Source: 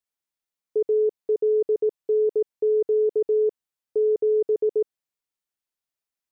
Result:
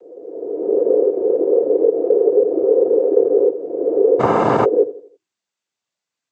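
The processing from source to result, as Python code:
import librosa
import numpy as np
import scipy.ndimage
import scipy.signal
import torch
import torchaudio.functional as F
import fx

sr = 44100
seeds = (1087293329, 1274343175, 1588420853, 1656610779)

y = fx.spec_swells(x, sr, rise_s=1.73)
y = fx.hum_notches(y, sr, base_hz=50, count=7)
y = fx.noise_vocoder(y, sr, seeds[0], bands=16)
y = fx.echo_feedback(y, sr, ms=82, feedback_pct=41, wet_db=-15.0)
y = fx.spectral_comp(y, sr, ratio=10.0, at=(4.19, 4.64), fade=0.02)
y = y * 10.0 ** (6.5 / 20.0)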